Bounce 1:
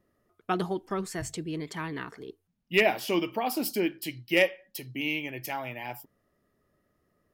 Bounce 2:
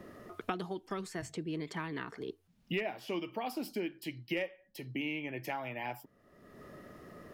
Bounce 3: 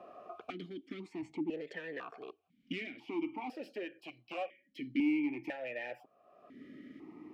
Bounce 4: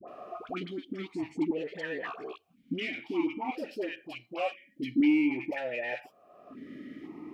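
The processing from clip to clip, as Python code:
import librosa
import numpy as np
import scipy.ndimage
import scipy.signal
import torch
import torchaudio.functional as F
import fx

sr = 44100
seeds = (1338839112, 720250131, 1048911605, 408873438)

y1 = fx.high_shelf(x, sr, hz=6400.0, db=-10.0)
y1 = fx.band_squash(y1, sr, depth_pct=100)
y1 = F.gain(torch.from_numpy(y1), -8.0).numpy()
y2 = np.clip(y1, -10.0 ** (-35.0 / 20.0), 10.0 ** (-35.0 / 20.0))
y2 = fx.vowel_held(y2, sr, hz=2.0)
y2 = F.gain(torch.from_numpy(y2), 11.5).numpy()
y3 = fx.dispersion(y2, sr, late='highs', ms=81.0, hz=900.0)
y3 = F.gain(torch.from_numpy(y3), 7.0).numpy()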